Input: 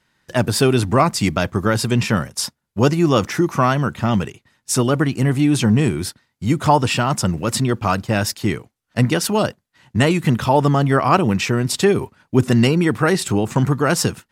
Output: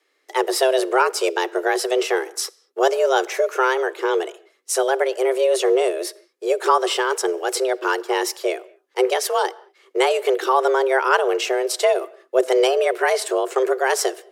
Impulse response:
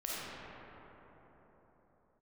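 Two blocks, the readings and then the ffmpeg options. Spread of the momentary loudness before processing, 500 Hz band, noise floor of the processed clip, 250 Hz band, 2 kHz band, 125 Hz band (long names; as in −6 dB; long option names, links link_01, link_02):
8 LU, +3.0 dB, −66 dBFS, −12.0 dB, +0.5 dB, below −40 dB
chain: -filter_complex "[0:a]afreqshift=260,asplit=2[link_01][link_02];[1:a]atrim=start_sample=2205,afade=type=out:start_time=0.28:duration=0.01,atrim=end_sample=12789[link_03];[link_02][link_03]afir=irnorm=-1:irlink=0,volume=-22.5dB[link_04];[link_01][link_04]amix=inputs=2:normalize=0,volume=-3dB"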